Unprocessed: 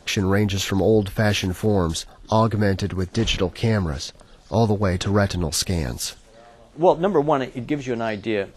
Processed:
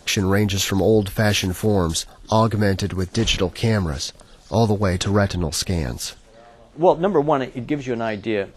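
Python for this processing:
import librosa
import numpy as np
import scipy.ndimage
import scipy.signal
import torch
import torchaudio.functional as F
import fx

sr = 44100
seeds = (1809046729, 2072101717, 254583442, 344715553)

y = fx.high_shelf(x, sr, hz=4900.0, db=fx.steps((0.0, 6.5), (5.16, -3.5)))
y = y * 10.0 ** (1.0 / 20.0)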